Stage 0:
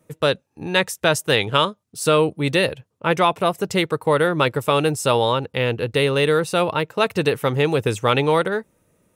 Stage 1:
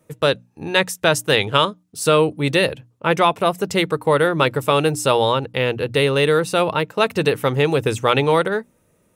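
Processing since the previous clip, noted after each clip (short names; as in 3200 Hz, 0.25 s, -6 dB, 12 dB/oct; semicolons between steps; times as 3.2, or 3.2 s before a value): notches 60/120/180/240/300 Hz; gain +1.5 dB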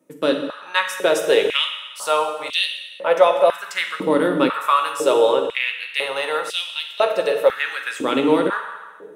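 on a send at -3 dB: reverb RT60 1.4 s, pre-delay 3 ms; on the sum: stepped high-pass 2 Hz 280–3200 Hz; gain -6.5 dB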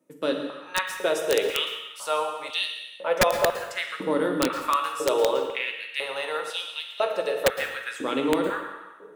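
wrapped overs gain 5 dB; plate-style reverb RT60 0.79 s, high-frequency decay 0.85×, pre-delay 0.1 s, DRR 10 dB; gain -7 dB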